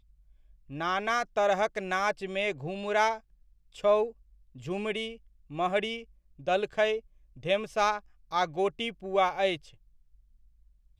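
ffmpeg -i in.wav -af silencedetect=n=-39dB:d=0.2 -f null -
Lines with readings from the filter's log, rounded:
silence_start: 0.00
silence_end: 0.70 | silence_duration: 0.70
silence_start: 3.18
silence_end: 3.76 | silence_duration: 0.58
silence_start: 4.10
silence_end: 4.56 | silence_duration: 0.46
silence_start: 5.15
silence_end: 5.51 | silence_duration: 0.36
silence_start: 6.02
silence_end: 6.47 | silence_duration: 0.44
silence_start: 6.99
silence_end: 7.43 | silence_duration: 0.44
silence_start: 7.99
silence_end: 8.32 | silence_duration: 0.34
silence_start: 9.56
silence_end: 10.99 | silence_duration: 1.43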